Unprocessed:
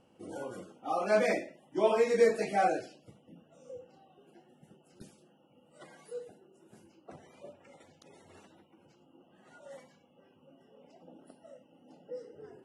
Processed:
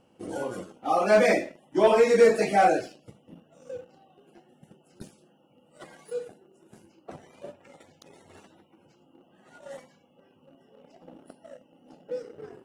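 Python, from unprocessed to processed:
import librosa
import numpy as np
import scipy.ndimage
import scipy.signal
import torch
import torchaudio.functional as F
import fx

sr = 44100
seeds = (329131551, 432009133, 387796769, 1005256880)

y = fx.leveller(x, sr, passes=1)
y = y * 10.0 ** (4.5 / 20.0)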